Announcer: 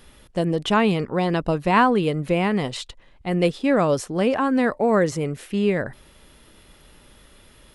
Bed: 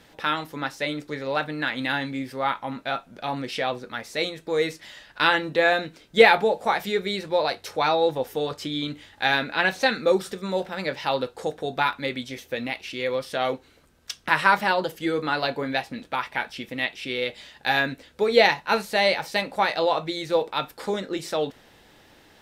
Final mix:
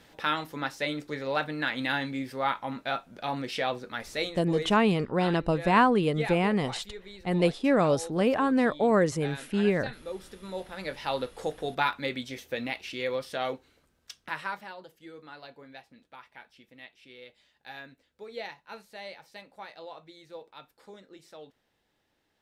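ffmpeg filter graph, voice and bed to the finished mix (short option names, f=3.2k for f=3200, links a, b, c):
-filter_complex "[0:a]adelay=4000,volume=-4dB[a];[1:a]volume=12.5dB,afade=t=out:st=4.06:d=0.75:silence=0.158489,afade=t=in:st=10.06:d=1.47:silence=0.16788,afade=t=out:st=12.9:d=1.81:silence=0.125893[b];[a][b]amix=inputs=2:normalize=0"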